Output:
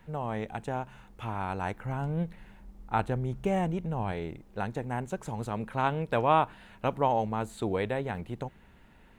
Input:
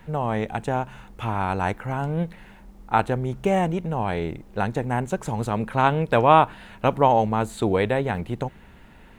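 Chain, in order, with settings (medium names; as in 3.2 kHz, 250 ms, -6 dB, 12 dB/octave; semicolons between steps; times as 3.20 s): 1.77–4.12 s: bass shelf 170 Hz +7 dB; trim -8.5 dB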